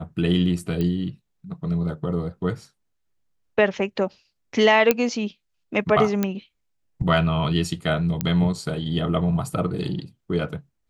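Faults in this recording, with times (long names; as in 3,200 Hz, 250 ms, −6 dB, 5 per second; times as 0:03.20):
0:00.81: click −15 dBFS
0:04.91: click −3 dBFS
0:06.23: click −9 dBFS
0:08.21: click −8 dBFS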